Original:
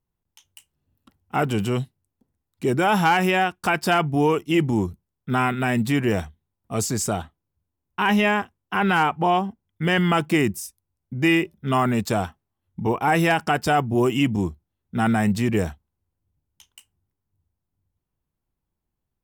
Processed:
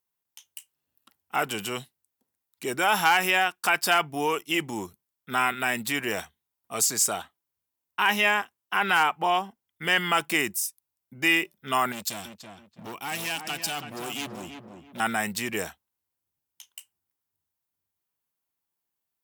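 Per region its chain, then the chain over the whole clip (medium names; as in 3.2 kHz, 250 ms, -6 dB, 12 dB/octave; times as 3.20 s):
11.92–15.00 s: high-order bell 890 Hz -10.5 dB 2.6 oct + overload inside the chain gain 24.5 dB + filtered feedback delay 330 ms, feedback 33%, low-pass 1.7 kHz, level -6 dB
whole clip: high-pass 1.4 kHz 6 dB/octave; treble shelf 11 kHz +8 dB; trim +2.5 dB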